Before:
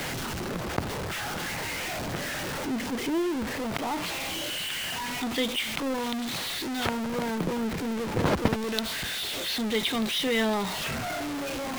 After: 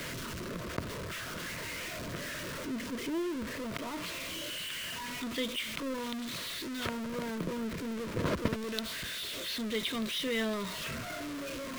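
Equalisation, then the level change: Butterworth band-stop 800 Hz, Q 3.5; -6.5 dB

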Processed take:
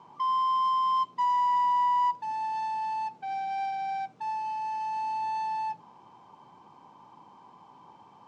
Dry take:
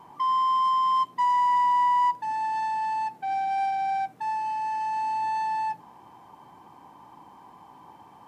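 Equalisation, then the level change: cabinet simulation 110–6800 Hz, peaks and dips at 300 Hz -5 dB, 730 Hz -4 dB, 1.8 kHz -8 dB; -2.0 dB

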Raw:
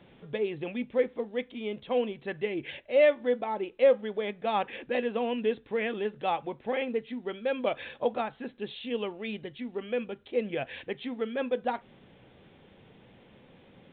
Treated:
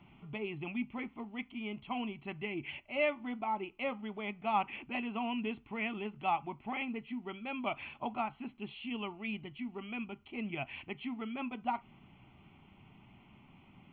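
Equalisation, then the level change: static phaser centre 2.5 kHz, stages 8; 0.0 dB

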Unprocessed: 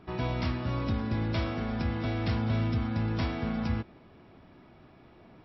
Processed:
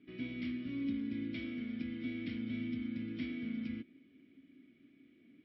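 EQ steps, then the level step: vowel filter i; +2.5 dB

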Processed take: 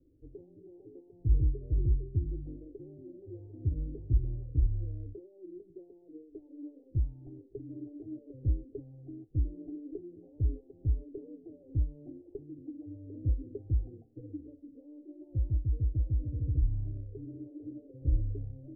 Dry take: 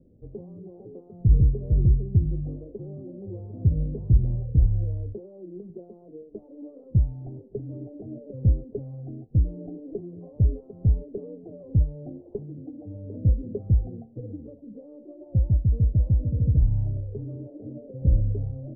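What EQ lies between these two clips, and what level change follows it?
cascade formant filter u; bass shelf 150 Hz +7.5 dB; static phaser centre 500 Hz, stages 4; +2.0 dB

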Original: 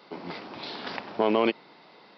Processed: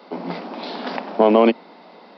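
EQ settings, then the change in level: rippled Chebyshev high-pass 170 Hz, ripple 6 dB; peaking EQ 250 Hz +5.5 dB 3 oct; +8.5 dB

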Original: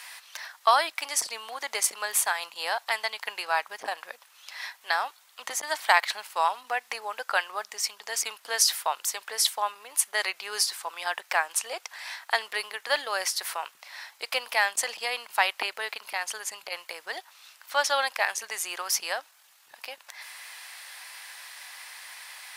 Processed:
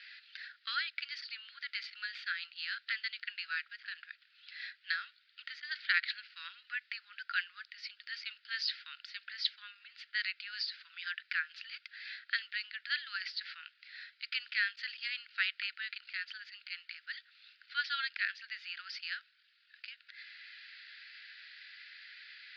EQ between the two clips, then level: Chebyshev band-pass 1.4–4.8 kHz, order 5; -6.0 dB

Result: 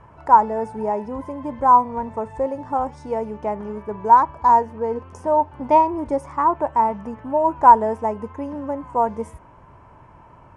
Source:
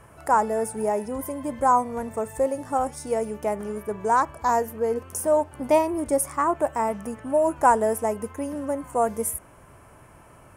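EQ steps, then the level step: Gaussian low-pass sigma 1.7 samples; bass shelf 330 Hz +5.5 dB; peaking EQ 940 Hz +13 dB 0.28 oct; -2.0 dB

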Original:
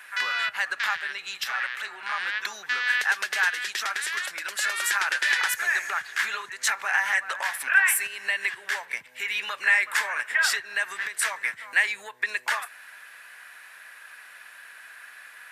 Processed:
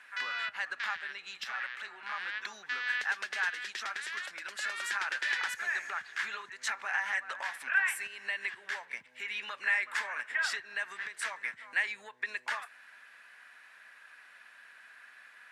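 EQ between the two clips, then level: distance through air 59 m; peaking EQ 230 Hz +6 dB 0.58 oct; -8.0 dB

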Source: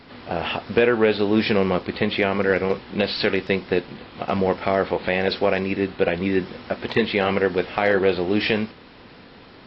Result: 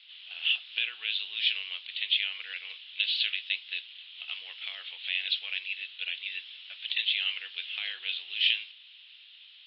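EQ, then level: Butterworth band-pass 3.2 kHz, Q 3.2; distance through air 57 m; +6.5 dB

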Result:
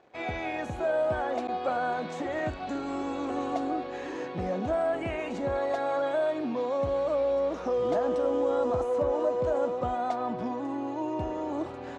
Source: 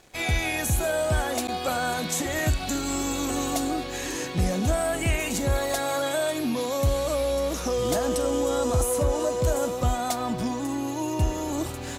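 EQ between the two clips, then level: band-pass filter 630 Hz, Q 0.71; distance through air 80 m; 0.0 dB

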